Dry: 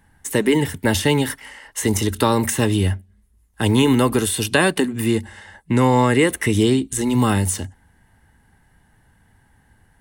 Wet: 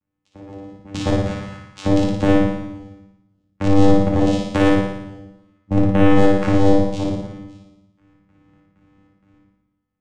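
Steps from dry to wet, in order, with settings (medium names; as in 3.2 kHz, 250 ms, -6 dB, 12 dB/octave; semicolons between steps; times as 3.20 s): trance gate "......x.xx.xx.x" 96 bpm -24 dB; vocoder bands 4, saw 98.3 Hz; in parallel at -10 dB: wavefolder -17.5 dBFS; on the sum: short-mantissa float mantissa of 8-bit; on a send: flutter echo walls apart 9.8 m, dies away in 0.89 s; on the sum: simulated room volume 670 m³, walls furnished, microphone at 2.3 m; trim -1.5 dB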